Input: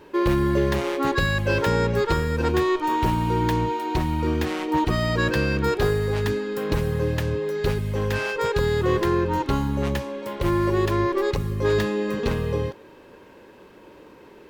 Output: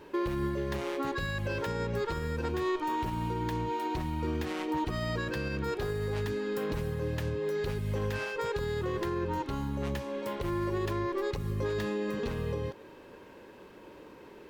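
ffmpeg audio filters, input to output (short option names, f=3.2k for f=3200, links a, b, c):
-af "alimiter=limit=-21dB:level=0:latency=1:release=216,volume=-3dB"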